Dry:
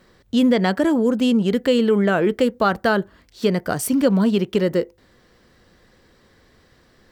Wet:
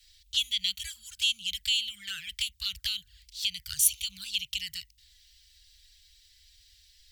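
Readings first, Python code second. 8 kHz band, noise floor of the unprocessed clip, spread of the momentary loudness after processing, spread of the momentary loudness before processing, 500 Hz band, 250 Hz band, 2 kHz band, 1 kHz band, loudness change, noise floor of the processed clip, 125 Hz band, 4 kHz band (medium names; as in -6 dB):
+4.5 dB, -57 dBFS, 13 LU, 7 LU, under -40 dB, under -40 dB, -11.0 dB, under -35 dB, -10.0 dB, -64 dBFS, -28.5 dB, +5.0 dB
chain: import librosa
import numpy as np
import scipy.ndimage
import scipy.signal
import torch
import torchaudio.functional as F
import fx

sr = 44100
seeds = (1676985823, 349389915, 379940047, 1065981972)

y = scipy.signal.sosfilt(scipy.signal.cheby2(4, 80, [270.0, 760.0], 'bandstop', fs=sr, output='sos'), x)
y = fx.env_flanger(y, sr, rest_ms=5.4, full_db=-35.0)
y = fx.low_shelf(y, sr, hz=98.0, db=-10.0)
y = y * librosa.db_to_amplitude(8.0)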